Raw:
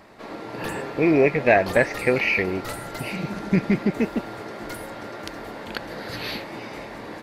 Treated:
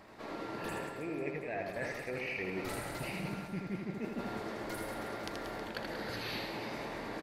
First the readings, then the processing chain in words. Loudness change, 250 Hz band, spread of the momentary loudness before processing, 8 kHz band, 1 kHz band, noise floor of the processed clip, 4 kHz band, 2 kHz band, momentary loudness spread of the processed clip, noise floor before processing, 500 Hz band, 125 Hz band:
-16.5 dB, -15.5 dB, 17 LU, -8.5 dB, -12.0 dB, -46 dBFS, -9.0 dB, -15.0 dB, 3 LU, -38 dBFS, -16.0 dB, -14.0 dB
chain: reverse; compressor 16:1, threshold -30 dBFS, peak gain reduction 19 dB; reverse; reverse bouncing-ball echo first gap 80 ms, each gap 1.3×, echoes 5; gain -6.5 dB

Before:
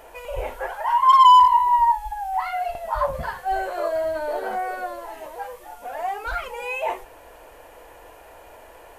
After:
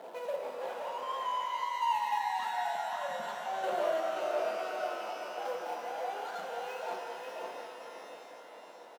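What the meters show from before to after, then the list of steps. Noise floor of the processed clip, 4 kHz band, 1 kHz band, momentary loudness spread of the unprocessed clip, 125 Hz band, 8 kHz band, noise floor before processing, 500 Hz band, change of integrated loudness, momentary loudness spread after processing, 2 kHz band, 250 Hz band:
-51 dBFS, -11.5 dB, -15.5 dB, 22 LU, under -20 dB, n/a, -47 dBFS, -6.5 dB, -15.0 dB, 15 LU, -8.0 dB, -7.0 dB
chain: median filter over 25 samples; reverse; compressor, threshold -30 dBFS, peak gain reduction 18 dB; reverse; chopper 0.55 Hz, depth 60%, duty 20%; rippled Chebyshev high-pass 160 Hz, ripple 3 dB; on a send: echo 0.529 s -5.5 dB; on the sum: shimmer reverb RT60 3.5 s, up +12 st, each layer -8 dB, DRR 2 dB; gain +1.5 dB

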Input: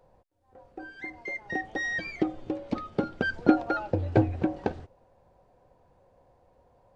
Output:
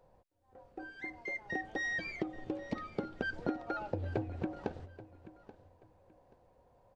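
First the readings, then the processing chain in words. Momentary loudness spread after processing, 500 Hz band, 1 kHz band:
17 LU, -9.5 dB, -9.5 dB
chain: compressor 6:1, threshold -28 dBFS, peak gain reduction 14 dB; on a send: feedback echo 0.831 s, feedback 25%, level -17 dB; on the sum: gain -4 dB

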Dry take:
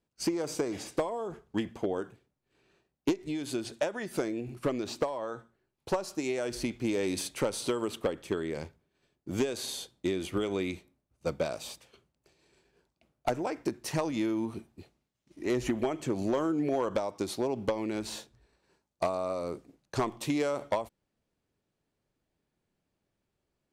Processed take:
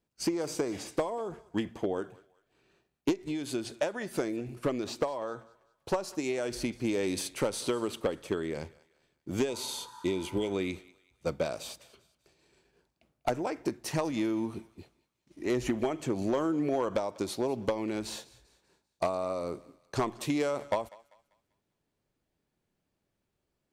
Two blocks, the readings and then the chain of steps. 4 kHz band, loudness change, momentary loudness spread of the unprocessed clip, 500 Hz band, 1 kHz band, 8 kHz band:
0.0 dB, 0.0 dB, 8 LU, 0.0 dB, 0.0 dB, 0.0 dB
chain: thinning echo 0.196 s, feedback 40%, high-pass 670 Hz, level -20 dB; spectral repair 9.51–10.48, 840–1900 Hz after

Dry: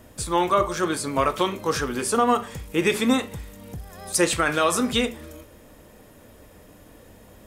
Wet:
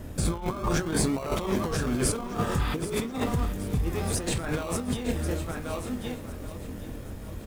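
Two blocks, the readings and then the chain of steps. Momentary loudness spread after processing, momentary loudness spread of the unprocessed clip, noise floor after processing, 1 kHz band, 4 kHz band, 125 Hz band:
12 LU, 17 LU, -39 dBFS, -10.0 dB, -8.0 dB, +6.5 dB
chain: dynamic EQ 770 Hz, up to +5 dB, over -31 dBFS, Q 1.1; doubler 24 ms -7.5 dB; in parallel at -3.5 dB: decimation with a swept rate 37×, swing 60% 0.59 Hz; on the sum: low shelf 290 Hz +8.5 dB; on a send: echo 1.085 s -21.5 dB; on the sum: spectral repair 2.49–2.96, 720–5100 Hz both; negative-ratio compressor -23 dBFS, ratio -1; lo-fi delay 0.778 s, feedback 55%, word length 7-bit, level -13 dB; gain -6 dB

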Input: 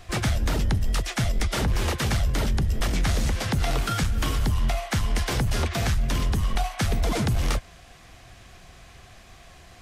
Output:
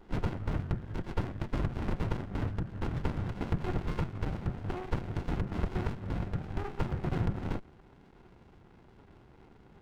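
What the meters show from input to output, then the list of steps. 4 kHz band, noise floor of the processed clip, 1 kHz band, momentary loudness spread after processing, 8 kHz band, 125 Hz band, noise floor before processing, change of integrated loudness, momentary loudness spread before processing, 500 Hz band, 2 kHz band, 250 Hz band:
-20.5 dB, -58 dBFS, -9.5 dB, 3 LU, under -25 dB, -8.0 dB, -49 dBFS, -9.5 dB, 2 LU, -7.0 dB, -14.0 dB, -6.0 dB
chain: mistuned SSB -320 Hz 180–2100 Hz; small resonant body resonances 550/1400 Hz, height 7 dB; running maximum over 65 samples

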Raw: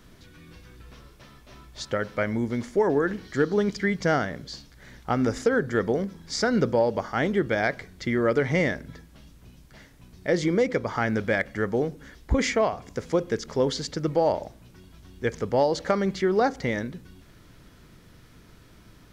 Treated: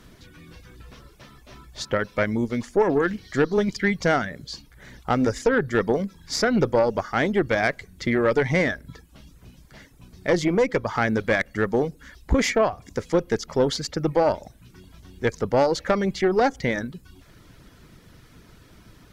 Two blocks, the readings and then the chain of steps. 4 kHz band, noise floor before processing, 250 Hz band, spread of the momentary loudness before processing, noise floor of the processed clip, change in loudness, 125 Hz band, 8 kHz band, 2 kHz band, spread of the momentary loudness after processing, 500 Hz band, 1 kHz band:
+3.0 dB, -53 dBFS, +2.0 dB, 9 LU, -53 dBFS, +2.5 dB, +1.5 dB, +3.0 dB, +3.0 dB, 9 LU, +2.0 dB, +2.5 dB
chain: reverb removal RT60 0.53 s; tube stage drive 16 dB, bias 0.5; gain +5.5 dB

